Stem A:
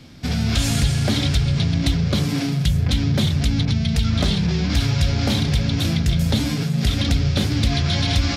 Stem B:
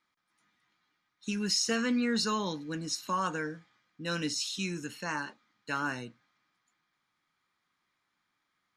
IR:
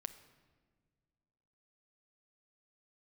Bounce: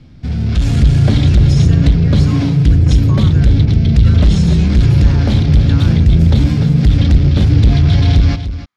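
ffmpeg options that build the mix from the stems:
-filter_complex "[0:a]aemphasis=mode=reproduction:type=bsi,asoftclip=type=tanh:threshold=0.473,volume=0.447,asplit=3[s0][s1][s2];[s1]volume=0.596[s3];[s2]volume=0.473[s4];[1:a]acompressor=threshold=0.0178:ratio=6,volume=0.841[s5];[2:a]atrim=start_sample=2205[s6];[s3][s6]afir=irnorm=-1:irlink=0[s7];[s4]aecho=0:1:296:1[s8];[s0][s5][s7][s8]amix=inputs=4:normalize=0,dynaudnorm=f=240:g=5:m=3.76"

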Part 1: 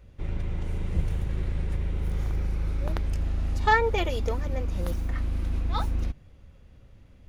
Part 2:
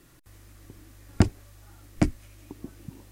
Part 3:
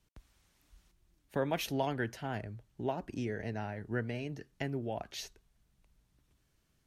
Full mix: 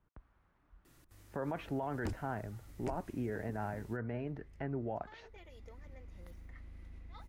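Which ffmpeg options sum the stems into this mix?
-filter_complex "[0:a]equalizer=f=2000:w=7.1:g=13,acompressor=threshold=0.0251:ratio=3,adelay=1400,volume=0.141[s0];[1:a]asoftclip=type=tanh:threshold=0.0891,adelay=850,volume=0.422[s1];[2:a]lowpass=f=1300:t=q:w=1.6,volume=0.944,asplit=2[s2][s3];[s3]apad=whole_len=383097[s4];[s0][s4]sidechaincompress=threshold=0.00794:ratio=4:attack=16:release=941[s5];[s5][s1][s2]amix=inputs=3:normalize=0,alimiter=level_in=1.58:limit=0.0631:level=0:latency=1:release=55,volume=0.631"

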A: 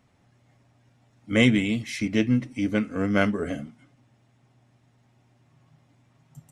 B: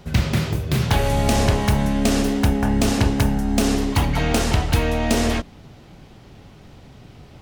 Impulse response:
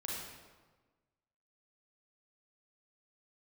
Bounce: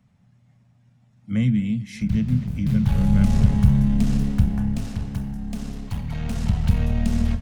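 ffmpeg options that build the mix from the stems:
-filter_complex "[0:a]volume=0.596,asplit=2[s0][s1];[s1]volume=0.0841[s2];[1:a]aeval=exprs='(tanh(3.98*val(0)+0.6)-tanh(0.6))/3.98':c=same,adelay=1950,volume=2.11,afade=t=in:st=2.52:d=0.71:silence=0.354813,afade=t=out:st=4.18:d=0.79:silence=0.266073,afade=t=in:st=6.09:d=0.74:silence=0.316228,asplit=2[s3][s4];[s4]volume=0.299[s5];[2:a]atrim=start_sample=2205[s6];[s5][s6]afir=irnorm=-1:irlink=0[s7];[s2]aecho=0:1:246:1[s8];[s0][s3][s7][s8]amix=inputs=4:normalize=0,lowshelf=f=250:t=q:w=3:g=7.5,acrossover=split=210[s9][s10];[s10]acompressor=threshold=0.0178:ratio=2.5[s11];[s9][s11]amix=inputs=2:normalize=0"

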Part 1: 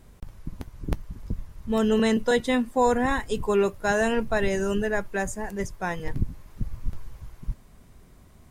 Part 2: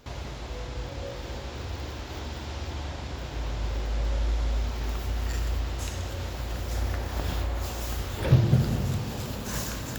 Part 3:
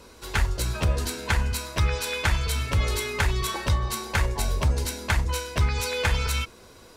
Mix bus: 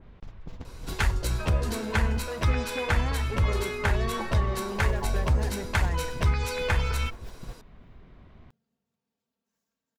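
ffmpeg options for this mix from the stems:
-filter_complex "[0:a]lowpass=f=3600:w=0.5412,lowpass=f=3600:w=1.3066,acompressor=threshold=0.0447:ratio=6,asoftclip=type=tanh:threshold=0.0211,volume=1.19,asplit=2[s0][s1];[1:a]highpass=150,aecho=1:1:4.4:0.71,volume=0.237[s2];[2:a]adelay=650,volume=0.891[s3];[s1]apad=whole_len=440361[s4];[s2][s4]sidechaingate=range=0.01:threshold=0.0141:ratio=16:detection=peak[s5];[s0][s5][s3]amix=inputs=3:normalize=0,adynamicequalizer=threshold=0.00631:dfrequency=2700:dqfactor=0.7:tfrequency=2700:tqfactor=0.7:attack=5:release=100:ratio=0.375:range=4:mode=cutabove:tftype=highshelf"

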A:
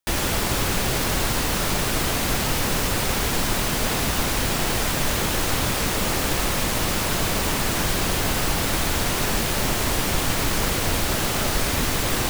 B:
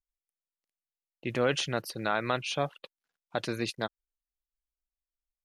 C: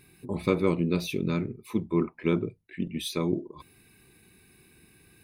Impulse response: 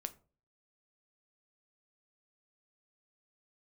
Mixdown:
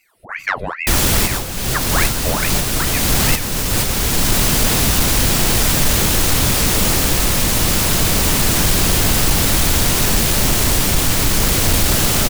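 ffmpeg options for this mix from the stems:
-filter_complex "[0:a]lowshelf=f=330:g=8,adelay=800,volume=1.41[s0];[1:a]volume=0.158,asplit=2[s1][s2];[2:a]equalizer=f=270:w=1.4:g=12.5,aeval=exprs='val(0)*sin(2*PI*1300*n/s+1300*0.85/2.4*sin(2*PI*2.4*n/s))':c=same,volume=0.398[s3];[s2]apad=whole_len=577283[s4];[s0][s4]sidechaincompress=threshold=0.00398:ratio=12:attack=10:release=710[s5];[s5][s1][s3]amix=inputs=3:normalize=0,highshelf=f=3000:g=9.5,dynaudnorm=f=130:g=5:m=3.76,asoftclip=type=tanh:threshold=0.531"

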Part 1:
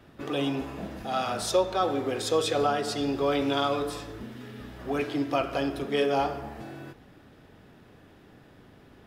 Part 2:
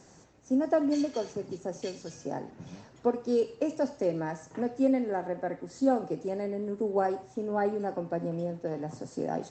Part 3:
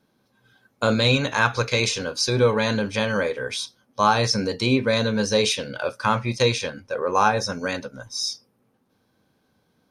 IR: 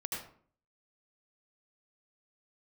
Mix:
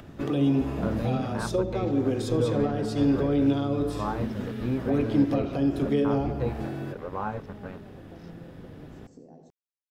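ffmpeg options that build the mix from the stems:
-filter_complex "[0:a]bandreject=f=60:t=h:w=6,bandreject=f=120:t=h:w=6,bandreject=f=180:t=h:w=6,bandreject=f=240:t=h:w=6,bandreject=f=300:t=h:w=6,bandreject=f=360:t=h:w=6,bandreject=f=420:t=h:w=6,bandreject=f=480:t=h:w=6,acrossover=split=380[s0][s1];[s1]acompressor=threshold=0.0112:ratio=10[s2];[s0][s2]amix=inputs=2:normalize=0,volume=1.12,asplit=2[s3][s4];[s4]volume=0.126[s5];[1:a]equalizer=f=1600:t=o:w=1.6:g=-9.5,acompressor=threshold=0.0126:ratio=6,volume=0.126,asplit=2[s6][s7];[s7]volume=0.708[s8];[2:a]aeval=exprs='val(0)*gte(abs(val(0)),0.0708)':c=same,lowpass=1500,volume=0.178[s9];[3:a]atrim=start_sample=2205[s10];[s5][s8]amix=inputs=2:normalize=0[s11];[s11][s10]afir=irnorm=-1:irlink=0[s12];[s3][s6][s9][s12]amix=inputs=4:normalize=0,lowshelf=f=450:g=9.5,acompressor=mode=upward:threshold=0.00501:ratio=2.5"

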